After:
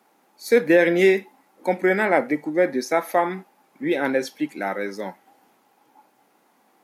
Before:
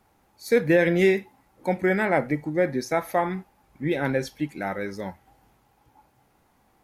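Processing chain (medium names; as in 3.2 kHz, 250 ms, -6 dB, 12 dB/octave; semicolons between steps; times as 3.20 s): high-pass 220 Hz 24 dB/octave; trim +3.5 dB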